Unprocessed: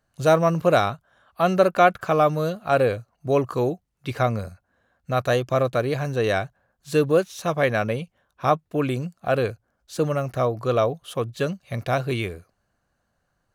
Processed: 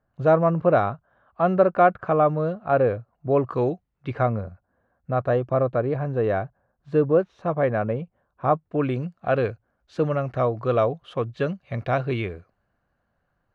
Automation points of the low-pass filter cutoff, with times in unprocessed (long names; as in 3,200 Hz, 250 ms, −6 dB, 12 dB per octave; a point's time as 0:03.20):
0:03.34 1,400 Hz
0:03.71 3,200 Hz
0:04.45 1,200 Hz
0:08.47 1,200 Hz
0:08.97 2,500 Hz